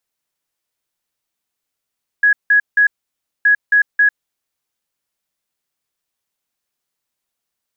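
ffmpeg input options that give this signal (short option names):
-f lavfi -i "aevalsrc='0.398*sin(2*PI*1670*t)*clip(min(mod(mod(t,1.22),0.27),0.1-mod(mod(t,1.22),0.27))/0.005,0,1)*lt(mod(t,1.22),0.81)':d=2.44:s=44100"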